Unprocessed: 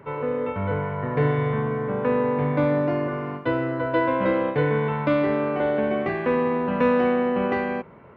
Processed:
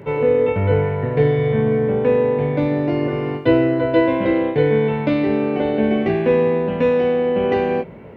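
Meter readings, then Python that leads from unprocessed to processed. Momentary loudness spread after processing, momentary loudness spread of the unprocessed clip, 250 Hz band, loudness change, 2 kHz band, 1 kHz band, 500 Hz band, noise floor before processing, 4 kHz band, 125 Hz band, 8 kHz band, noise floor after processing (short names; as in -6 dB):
3 LU, 5 LU, +5.5 dB, +5.5 dB, +1.5 dB, 0.0 dB, +6.5 dB, -44 dBFS, +7.0 dB, +5.5 dB, n/a, -32 dBFS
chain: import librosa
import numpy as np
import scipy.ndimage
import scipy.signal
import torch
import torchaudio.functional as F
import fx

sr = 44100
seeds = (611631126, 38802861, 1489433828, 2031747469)

y = fx.peak_eq(x, sr, hz=1200.0, db=-13.5, octaves=0.94)
y = fx.rider(y, sr, range_db=4, speed_s=0.5)
y = fx.doubler(y, sr, ms=18.0, db=-5.5)
y = y * librosa.db_to_amplitude(6.5)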